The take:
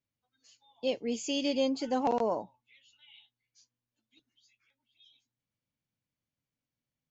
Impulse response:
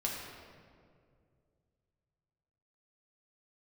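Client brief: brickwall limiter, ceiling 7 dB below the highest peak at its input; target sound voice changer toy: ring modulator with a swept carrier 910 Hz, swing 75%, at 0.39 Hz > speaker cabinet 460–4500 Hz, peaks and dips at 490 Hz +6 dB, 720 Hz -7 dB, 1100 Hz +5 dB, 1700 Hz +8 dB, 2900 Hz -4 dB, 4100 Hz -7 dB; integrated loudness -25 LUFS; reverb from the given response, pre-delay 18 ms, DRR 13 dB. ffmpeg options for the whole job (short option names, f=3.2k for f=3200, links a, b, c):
-filter_complex "[0:a]alimiter=level_in=1dB:limit=-24dB:level=0:latency=1,volume=-1dB,asplit=2[a][b];[1:a]atrim=start_sample=2205,adelay=18[c];[b][c]afir=irnorm=-1:irlink=0,volume=-17dB[d];[a][d]amix=inputs=2:normalize=0,aeval=exprs='val(0)*sin(2*PI*910*n/s+910*0.75/0.39*sin(2*PI*0.39*n/s))':c=same,highpass=460,equalizer=f=490:t=q:w=4:g=6,equalizer=f=720:t=q:w=4:g=-7,equalizer=f=1.1k:t=q:w=4:g=5,equalizer=f=1.7k:t=q:w=4:g=8,equalizer=f=2.9k:t=q:w=4:g=-4,equalizer=f=4.1k:t=q:w=4:g=-7,lowpass=f=4.5k:w=0.5412,lowpass=f=4.5k:w=1.3066,volume=11.5dB"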